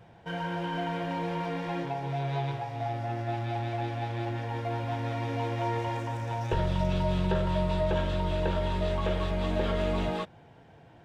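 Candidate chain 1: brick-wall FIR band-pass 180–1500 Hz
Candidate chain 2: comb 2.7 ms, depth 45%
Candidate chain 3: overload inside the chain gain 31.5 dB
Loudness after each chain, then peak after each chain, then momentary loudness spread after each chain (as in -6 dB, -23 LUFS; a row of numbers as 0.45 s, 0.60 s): -34.0 LUFS, -31.0 LUFS, -35.0 LUFS; -17.5 dBFS, -15.5 dBFS, -31.5 dBFS; 6 LU, 5 LU, 1 LU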